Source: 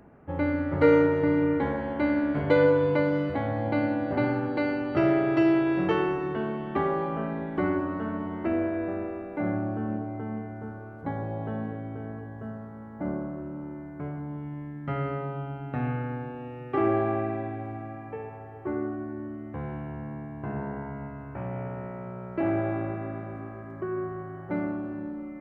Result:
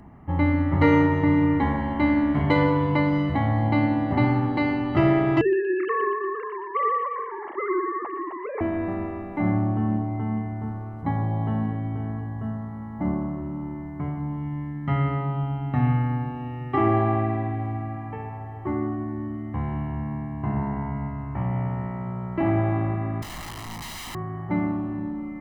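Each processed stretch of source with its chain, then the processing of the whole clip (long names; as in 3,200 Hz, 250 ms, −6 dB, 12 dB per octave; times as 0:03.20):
0:05.41–0:08.61: three sine waves on the formant tracks + band-pass filter 250–2,300 Hz + delay with a high-pass on its return 119 ms, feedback 54%, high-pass 1,700 Hz, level −4.5 dB
0:23.22–0:24.15: low-pass filter 1,600 Hz 6 dB per octave + wrap-around overflow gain 37 dB
whole clip: low-shelf EQ 150 Hz +5.5 dB; mains-hum notches 50/100/150 Hz; comb filter 1 ms, depth 66%; level +3 dB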